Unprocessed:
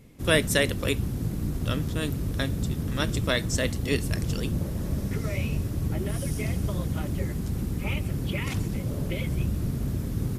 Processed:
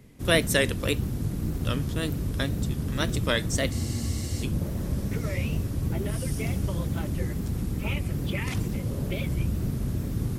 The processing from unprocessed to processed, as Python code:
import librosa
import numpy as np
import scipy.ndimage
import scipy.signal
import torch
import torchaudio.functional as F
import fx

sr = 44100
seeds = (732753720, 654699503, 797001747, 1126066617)

y = fx.wow_flutter(x, sr, seeds[0], rate_hz=2.1, depth_cents=97.0)
y = fx.spec_freeze(y, sr, seeds[1], at_s=3.74, hold_s=0.69)